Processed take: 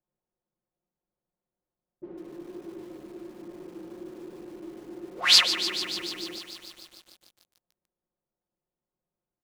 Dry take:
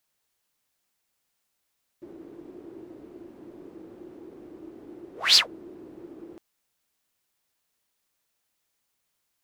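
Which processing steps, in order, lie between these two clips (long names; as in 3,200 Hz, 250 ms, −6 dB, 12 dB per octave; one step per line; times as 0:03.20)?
low-pass that shuts in the quiet parts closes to 540 Hz, open at −35 dBFS
comb filter 5.6 ms, depth 62%
feedback echo at a low word length 147 ms, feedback 80%, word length 8 bits, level −10.5 dB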